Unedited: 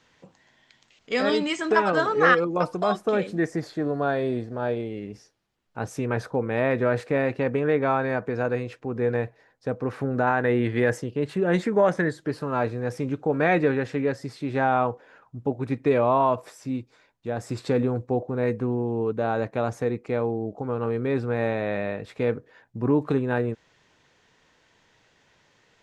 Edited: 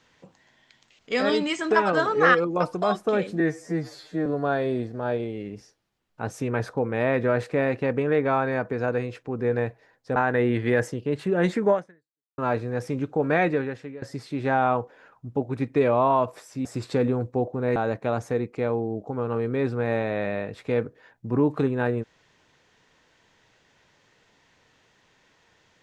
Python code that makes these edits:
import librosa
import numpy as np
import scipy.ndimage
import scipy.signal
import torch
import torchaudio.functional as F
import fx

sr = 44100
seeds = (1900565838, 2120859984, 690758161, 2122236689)

y = fx.edit(x, sr, fx.stretch_span(start_s=3.4, length_s=0.43, factor=2.0),
    fx.cut(start_s=9.73, length_s=0.53),
    fx.fade_out_span(start_s=11.82, length_s=0.66, curve='exp'),
    fx.fade_out_to(start_s=13.43, length_s=0.69, floor_db=-20.0),
    fx.cut(start_s=16.75, length_s=0.65),
    fx.cut(start_s=18.51, length_s=0.76), tone=tone)